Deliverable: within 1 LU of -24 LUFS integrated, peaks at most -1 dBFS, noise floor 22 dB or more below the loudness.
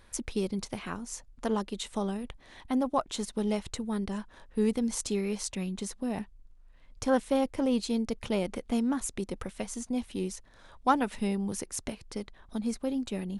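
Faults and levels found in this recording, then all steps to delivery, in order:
loudness -32.5 LUFS; peak level -12.0 dBFS; loudness target -24.0 LUFS
-> trim +8.5 dB

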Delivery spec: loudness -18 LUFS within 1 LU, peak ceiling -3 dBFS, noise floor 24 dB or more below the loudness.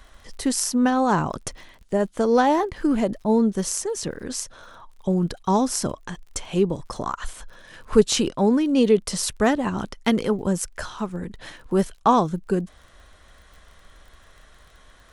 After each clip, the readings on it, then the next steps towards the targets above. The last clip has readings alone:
tick rate 34 per s; loudness -23.0 LUFS; peak level -3.0 dBFS; loudness target -18.0 LUFS
-> de-click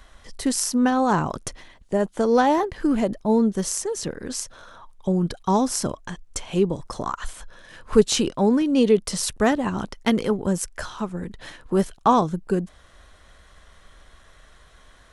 tick rate 0 per s; loudness -23.0 LUFS; peak level -3.0 dBFS; loudness target -18.0 LUFS
-> trim +5 dB; peak limiter -3 dBFS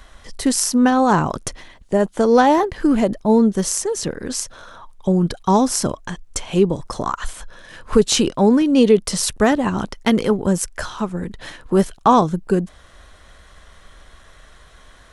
loudness -18.0 LUFS; peak level -3.0 dBFS; noise floor -47 dBFS

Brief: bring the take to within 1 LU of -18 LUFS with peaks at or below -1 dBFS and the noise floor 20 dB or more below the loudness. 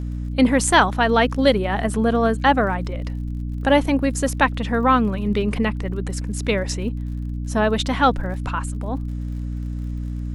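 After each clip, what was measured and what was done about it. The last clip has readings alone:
tick rate 47 per s; hum 60 Hz; highest harmonic 300 Hz; hum level -24 dBFS; loudness -21.0 LUFS; peak level -2.0 dBFS; loudness target -18.0 LUFS
-> de-click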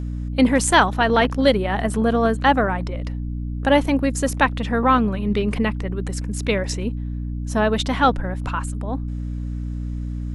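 tick rate 0.097 per s; hum 60 Hz; highest harmonic 300 Hz; hum level -24 dBFS
-> de-hum 60 Hz, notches 5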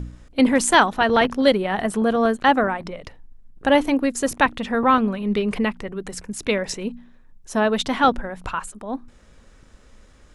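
hum not found; loudness -20.5 LUFS; peak level -2.0 dBFS; loudness target -18.0 LUFS
-> trim +2.5 dB; peak limiter -1 dBFS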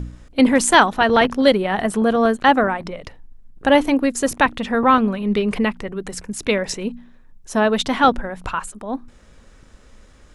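loudness -18.0 LUFS; peak level -1.0 dBFS; noise floor -48 dBFS

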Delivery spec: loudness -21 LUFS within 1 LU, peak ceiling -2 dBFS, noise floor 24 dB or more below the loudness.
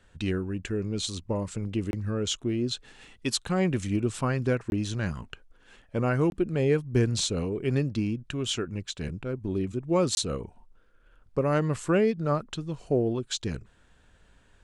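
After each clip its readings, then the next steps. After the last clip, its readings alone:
dropouts 4; longest dropout 21 ms; loudness -29.0 LUFS; peak level -10.5 dBFS; loudness target -21.0 LUFS
-> interpolate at 1.91/4.70/6.30/10.15 s, 21 ms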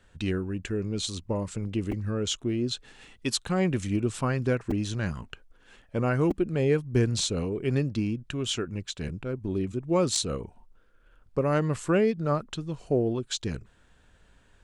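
dropouts 0; loudness -28.5 LUFS; peak level -10.5 dBFS; loudness target -21.0 LUFS
-> trim +7.5 dB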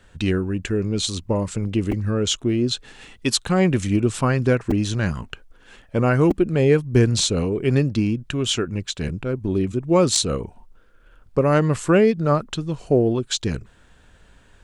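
loudness -21.0 LUFS; peak level -3.0 dBFS; noise floor -53 dBFS

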